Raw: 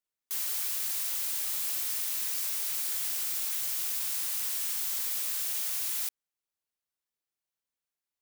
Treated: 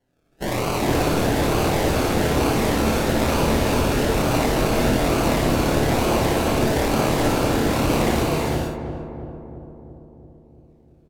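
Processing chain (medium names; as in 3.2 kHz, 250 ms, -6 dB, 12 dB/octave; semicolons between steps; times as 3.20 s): bass shelf 62 Hz +8.5 dB; band-stop 3 kHz, Q 6.3; in parallel at -0.5 dB: peak limiter -29.5 dBFS, peak gain reduction 10 dB; on the sum: formant-preserving pitch shift -6 st; decimation with a swept rate 26×, swing 60% 1.5 Hz; chorus 0.3 Hz, delay 17.5 ms, depth 2.9 ms; doubling 43 ms -4.5 dB; on a send: filtered feedback delay 250 ms, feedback 66%, low-pass 1.5 kHz, level -8 dB; on the sum: gated-style reverb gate 360 ms rising, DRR 0.5 dB; speed mistake 45 rpm record played at 33 rpm; trim +9 dB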